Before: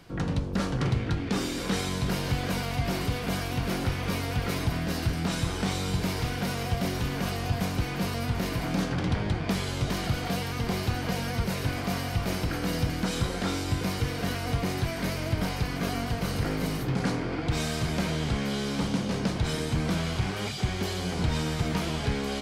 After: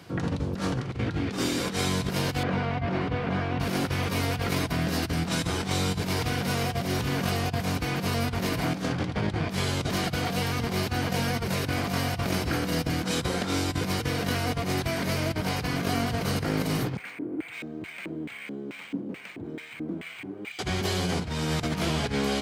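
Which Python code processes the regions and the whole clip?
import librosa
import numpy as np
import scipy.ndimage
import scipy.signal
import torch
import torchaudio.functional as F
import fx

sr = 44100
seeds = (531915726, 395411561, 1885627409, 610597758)

y = fx.chain(x, sr, fx.lowpass(hz=2100.0, slope=12),
    fx.hum_notches(base_hz=50, count=8), at=(2.43, 3.6))
y = fx.chain(y, sr, fx.filter_lfo_bandpass(shape='square', hz=2.3, low_hz=310.0, high_hz=2300.0, q=4.3),
    fx.resample_linear(factor=4), at=(16.97, 20.59))
y = scipy.signal.sosfilt(scipy.signal.butter(4, 70.0, 'highpass', fs=sr, output='sos'), y)
y = fx.over_compress(y, sr, threshold_db=-30.0, ratio=-0.5)
y = y * librosa.db_to_amplitude(3.0)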